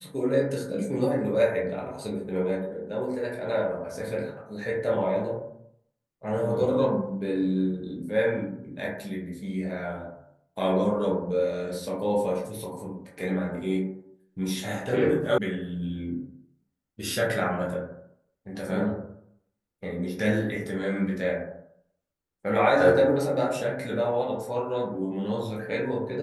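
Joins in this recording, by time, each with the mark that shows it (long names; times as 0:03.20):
0:15.38: cut off before it has died away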